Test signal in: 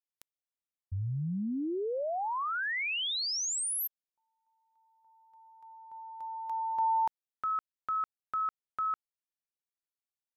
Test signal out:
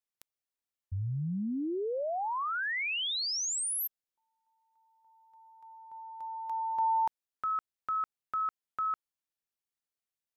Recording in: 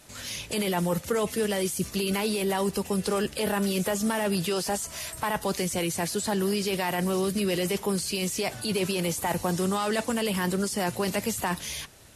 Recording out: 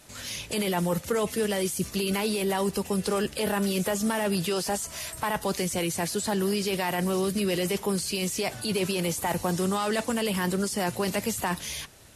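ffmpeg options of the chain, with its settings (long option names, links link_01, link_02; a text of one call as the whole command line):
ffmpeg -i in.wav -af "aeval=exprs='0.141*(abs(mod(val(0)/0.141+3,4)-2)-1)':channel_layout=same" out.wav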